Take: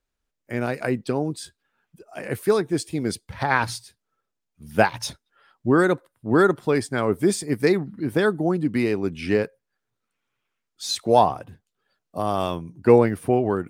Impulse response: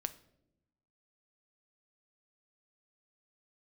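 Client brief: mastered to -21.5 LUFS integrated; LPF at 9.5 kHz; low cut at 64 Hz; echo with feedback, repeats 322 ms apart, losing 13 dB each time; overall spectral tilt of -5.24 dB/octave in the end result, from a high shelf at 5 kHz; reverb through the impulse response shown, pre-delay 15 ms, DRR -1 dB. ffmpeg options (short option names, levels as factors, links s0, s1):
-filter_complex "[0:a]highpass=64,lowpass=9500,highshelf=f=5000:g=-4,aecho=1:1:322|644|966:0.224|0.0493|0.0108,asplit=2[s0][s1];[1:a]atrim=start_sample=2205,adelay=15[s2];[s1][s2]afir=irnorm=-1:irlink=0,volume=1.26[s3];[s0][s3]amix=inputs=2:normalize=0,volume=0.75"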